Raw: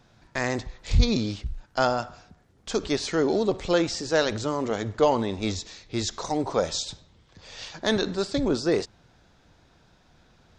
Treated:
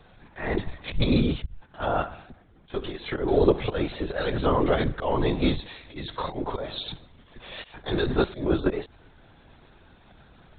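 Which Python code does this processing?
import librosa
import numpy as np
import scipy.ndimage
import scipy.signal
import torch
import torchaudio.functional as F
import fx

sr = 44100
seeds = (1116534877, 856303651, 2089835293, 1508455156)

y = fx.auto_swell(x, sr, attack_ms=277.0)
y = fx.lpc_vocoder(y, sr, seeds[0], excitation='whisper', order=16)
y = y * librosa.db_to_amplitude(5.5)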